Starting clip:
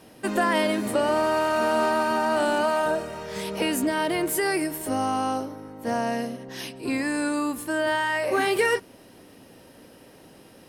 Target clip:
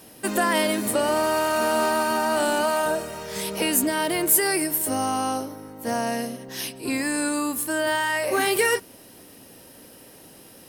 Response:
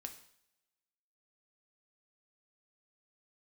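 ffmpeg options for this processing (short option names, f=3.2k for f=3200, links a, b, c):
-af "aemphasis=mode=production:type=50kf"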